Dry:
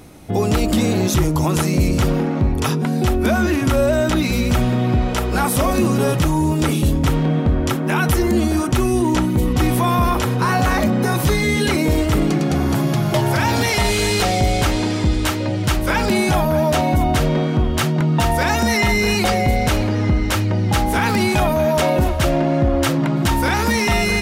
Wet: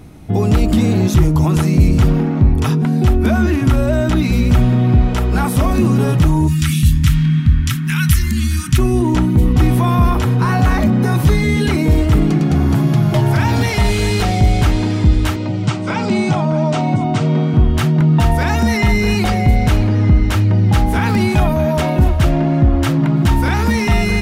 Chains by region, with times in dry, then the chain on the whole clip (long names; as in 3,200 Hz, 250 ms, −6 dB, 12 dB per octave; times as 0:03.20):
0:06.47–0:08.77: Chebyshev band-stop filter 170–1,700 Hz + high-shelf EQ 2,800 Hz +10.5 dB + steady tone 1,800 Hz −47 dBFS
0:15.36–0:17.54: Chebyshev band-pass filter 110–8,400 Hz, order 5 + notch filter 1,700 Hz, Q 6.4
whole clip: bass and treble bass +8 dB, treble −4 dB; notch filter 540 Hz, Q 12; level −1 dB